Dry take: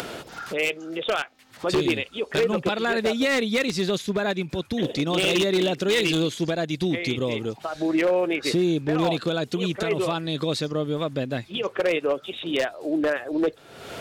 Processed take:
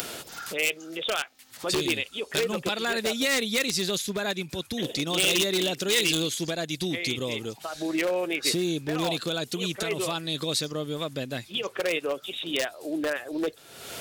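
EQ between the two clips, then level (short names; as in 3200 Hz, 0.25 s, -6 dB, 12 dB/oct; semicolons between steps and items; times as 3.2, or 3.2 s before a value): pre-emphasis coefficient 0.8; +8.0 dB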